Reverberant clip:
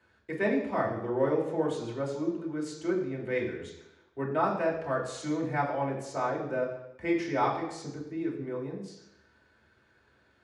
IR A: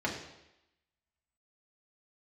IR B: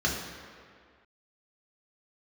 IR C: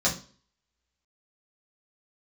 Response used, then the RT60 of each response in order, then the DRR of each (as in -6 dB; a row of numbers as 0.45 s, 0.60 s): A; 0.90 s, 2.0 s, 0.40 s; -3.0 dB, -3.0 dB, -6.0 dB